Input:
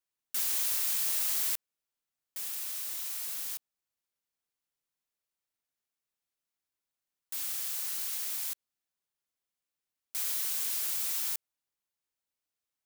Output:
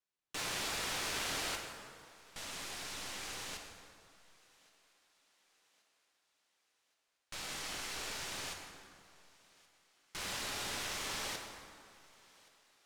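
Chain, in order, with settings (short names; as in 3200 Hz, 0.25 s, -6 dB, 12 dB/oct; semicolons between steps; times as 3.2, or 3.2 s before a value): tracing distortion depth 0.19 ms; air absorption 59 m; thinning echo 1.124 s, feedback 50%, high-pass 210 Hz, level -24 dB; plate-style reverb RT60 2.2 s, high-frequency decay 0.6×, DRR 2 dB; gain -1 dB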